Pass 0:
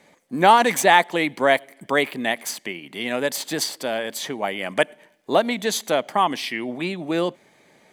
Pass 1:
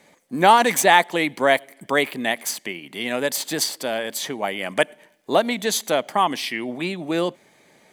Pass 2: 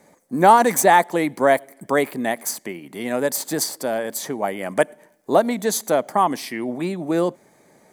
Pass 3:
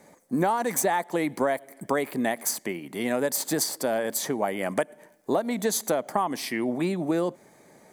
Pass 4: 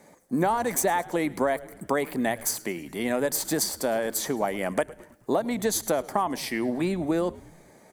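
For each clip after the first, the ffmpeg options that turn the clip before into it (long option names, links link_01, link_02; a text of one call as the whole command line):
ffmpeg -i in.wav -af "highshelf=frequency=5700:gain=4.5" out.wav
ffmpeg -i in.wav -af "equalizer=frequency=3000:width=1.1:gain=-14,volume=3dB" out.wav
ffmpeg -i in.wav -af "acompressor=threshold=-21dB:ratio=10" out.wav
ffmpeg -i in.wav -filter_complex "[0:a]asplit=5[link_01][link_02][link_03][link_04][link_05];[link_02]adelay=107,afreqshift=-120,volume=-20.5dB[link_06];[link_03]adelay=214,afreqshift=-240,volume=-25.9dB[link_07];[link_04]adelay=321,afreqshift=-360,volume=-31.2dB[link_08];[link_05]adelay=428,afreqshift=-480,volume=-36.6dB[link_09];[link_01][link_06][link_07][link_08][link_09]amix=inputs=5:normalize=0" out.wav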